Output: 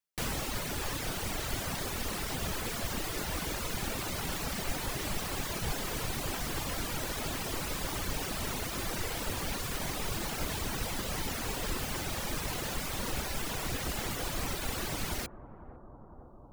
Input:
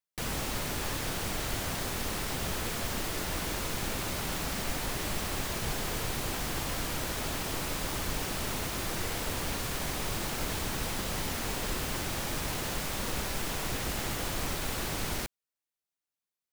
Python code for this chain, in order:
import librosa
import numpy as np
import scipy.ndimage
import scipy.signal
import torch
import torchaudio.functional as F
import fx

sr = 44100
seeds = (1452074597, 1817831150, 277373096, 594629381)

y = fx.dereverb_blind(x, sr, rt60_s=1.0)
y = fx.echo_bbd(y, sr, ms=501, stages=4096, feedback_pct=79, wet_db=-15.5)
y = y * 10.0 ** (1.0 / 20.0)